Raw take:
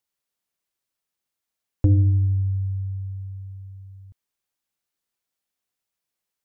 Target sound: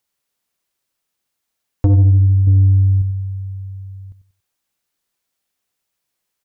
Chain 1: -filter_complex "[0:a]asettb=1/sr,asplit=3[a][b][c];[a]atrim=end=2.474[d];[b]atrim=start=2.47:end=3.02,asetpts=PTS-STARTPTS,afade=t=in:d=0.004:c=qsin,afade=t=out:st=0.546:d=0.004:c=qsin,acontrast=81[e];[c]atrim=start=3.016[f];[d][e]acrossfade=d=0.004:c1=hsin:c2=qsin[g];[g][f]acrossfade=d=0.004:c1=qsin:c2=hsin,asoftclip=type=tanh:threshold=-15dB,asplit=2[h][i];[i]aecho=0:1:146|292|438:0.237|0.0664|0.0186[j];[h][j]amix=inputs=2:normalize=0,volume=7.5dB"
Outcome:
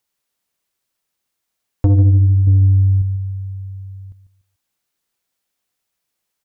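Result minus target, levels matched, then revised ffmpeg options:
echo 52 ms late
-filter_complex "[0:a]asettb=1/sr,asplit=3[a][b][c];[a]atrim=end=2.474[d];[b]atrim=start=2.47:end=3.02,asetpts=PTS-STARTPTS,afade=t=in:d=0.004:c=qsin,afade=t=out:st=0.546:d=0.004:c=qsin,acontrast=81[e];[c]atrim=start=3.016[f];[d][e]acrossfade=d=0.004:c1=hsin:c2=qsin[g];[g][f]acrossfade=d=0.004:c1=qsin:c2=hsin,asoftclip=type=tanh:threshold=-15dB,asplit=2[h][i];[i]aecho=0:1:94|188|282:0.237|0.0664|0.0186[j];[h][j]amix=inputs=2:normalize=0,volume=7.5dB"

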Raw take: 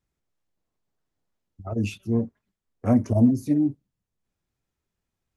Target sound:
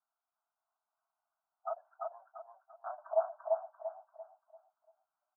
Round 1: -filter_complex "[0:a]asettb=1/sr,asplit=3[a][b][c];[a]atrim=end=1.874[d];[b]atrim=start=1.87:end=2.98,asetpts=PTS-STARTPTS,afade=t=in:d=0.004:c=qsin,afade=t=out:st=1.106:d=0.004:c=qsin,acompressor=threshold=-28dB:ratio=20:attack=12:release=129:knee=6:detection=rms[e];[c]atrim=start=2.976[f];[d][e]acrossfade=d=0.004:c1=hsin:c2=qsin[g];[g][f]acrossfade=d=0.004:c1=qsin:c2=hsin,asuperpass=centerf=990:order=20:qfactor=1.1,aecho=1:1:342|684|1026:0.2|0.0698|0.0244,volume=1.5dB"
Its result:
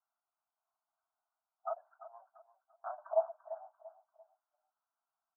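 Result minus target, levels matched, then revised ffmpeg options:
echo-to-direct -12 dB
-filter_complex "[0:a]asettb=1/sr,asplit=3[a][b][c];[a]atrim=end=1.874[d];[b]atrim=start=1.87:end=2.98,asetpts=PTS-STARTPTS,afade=t=in:d=0.004:c=qsin,afade=t=out:st=1.106:d=0.004:c=qsin,acompressor=threshold=-28dB:ratio=20:attack=12:release=129:knee=6:detection=rms[e];[c]atrim=start=2.976[f];[d][e]acrossfade=d=0.004:c1=hsin:c2=qsin[g];[g][f]acrossfade=d=0.004:c1=qsin:c2=hsin,asuperpass=centerf=990:order=20:qfactor=1.1,aecho=1:1:342|684|1026|1368|1710:0.794|0.278|0.0973|0.0341|0.0119,volume=1.5dB"

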